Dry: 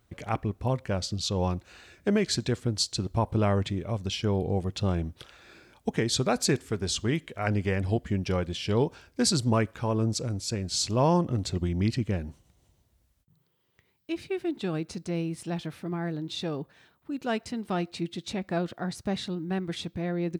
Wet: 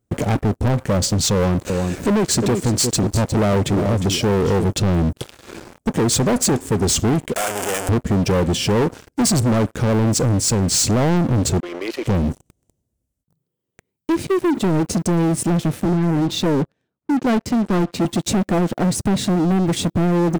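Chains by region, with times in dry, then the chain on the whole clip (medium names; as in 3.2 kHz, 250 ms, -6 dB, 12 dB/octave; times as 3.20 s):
1.34–4.65 s: bass shelf 180 Hz -4.5 dB + delay 355 ms -13.5 dB + upward compressor, threshold -35 dBFS
7.36–7.89 s: one-bit comparator + high-pass 940 Hz
11.60–12.07 s: Bessel high-pass 780 Hz, order 8 + distance through air 250 m + decay stretcher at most 28 dB/s
15.85–18.05 s: distance through air 92 m + three bands expanded up and down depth 40%
whole clip: graphic EQ 125/250/500/1000/2000/4000/8000 Hz +4/+7/+5/-5/-5/-7/+6 dB; compression 2:1, threshold -27 dBFS; waveshaping leveller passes 5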